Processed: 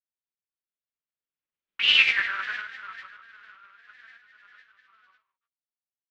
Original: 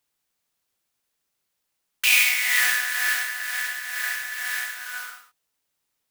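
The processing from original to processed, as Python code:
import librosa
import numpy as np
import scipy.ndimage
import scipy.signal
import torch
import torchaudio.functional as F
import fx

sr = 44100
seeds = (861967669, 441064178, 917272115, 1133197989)

y = fx.doppler_pass(x, sr, speed_mps=37, closest_m=2.5, pass_at_s=2.02)
y = fx.mod_noise(y, sr, seeds[0], snr_db=17)
y = scipy.signal.sosfilt(scipy.signal.butter(4, 3400.0, 'lowpass', fs=sr, output='sos'), y)
y = fx.peak_eq(y, sr, hz=810.0, db=-9.0, octaves=0.57)
y = fx.granulator(y, sr, seeds[1], grain_ms=100.0, per_s=20.0, spray_ms=100.0, spread_st=3)
y = y * librosa.db_to_amplitude(7.5)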